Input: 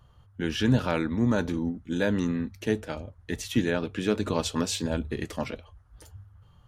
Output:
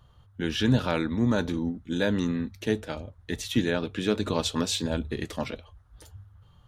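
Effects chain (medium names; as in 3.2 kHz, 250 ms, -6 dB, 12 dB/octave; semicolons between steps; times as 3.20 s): peaking EQ 3.7 kHz +6 dB 0.32 oct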